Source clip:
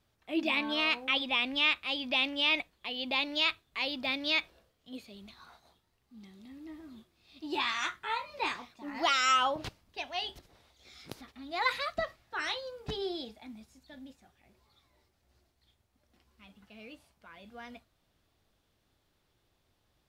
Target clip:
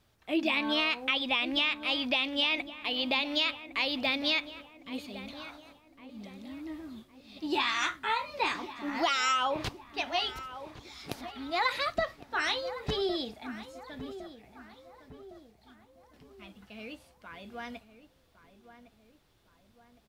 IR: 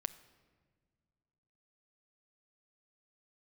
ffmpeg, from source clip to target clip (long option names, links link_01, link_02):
-filter_complex "[0:a]acompressor=threshold=-30dB:ratio=6,asplit=2[link_01][link_02];[link_02]adelay=1109,lowpass=frequency=1600:poles=1,volume=-12.5dB,asplit=2[link_03][link_04];[link_04]adelay=1109,lowpass=frequency=1600:poles=1,volume=0.51,asplit=2[link_05][link_06];[link_06]adelay=1109,lowpass=frequency=1600:poles=1,volume=0.51,asplit=2[link_07][link_08];[link_08]adelay=1109,lowpass=frequency=1600:poles=1,volume=0.51,asplit=2[link_09][link_10];[link_10]adelay=1109,lowpass=frequency=1600:poles=1,volume=0.51[link_11];[link_03][link_05][link_07][link_09][link_11]amix=inputs=5:normalize=0[link_12];[link_01][link_12]amix=inputs=2:normalize=0,volume=5.5dB"